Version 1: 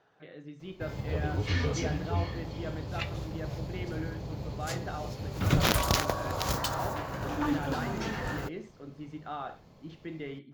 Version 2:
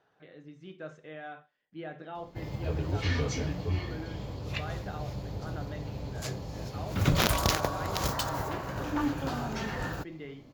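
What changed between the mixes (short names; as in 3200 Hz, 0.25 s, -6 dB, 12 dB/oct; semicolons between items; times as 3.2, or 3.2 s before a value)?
speech -3.5 dB; background: entry +1.55 s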